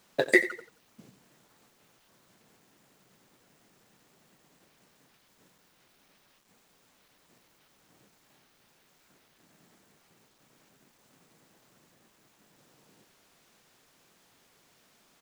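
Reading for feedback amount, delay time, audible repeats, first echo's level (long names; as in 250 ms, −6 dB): 31%, 89 ms, 2, −15.0 dB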